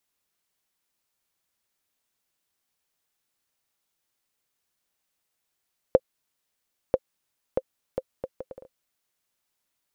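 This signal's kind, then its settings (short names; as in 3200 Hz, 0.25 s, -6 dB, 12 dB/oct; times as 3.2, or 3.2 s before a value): bouncing ball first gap 0.99 s, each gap 0.64, 522 Hz, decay 46 ms -4.5 dBFS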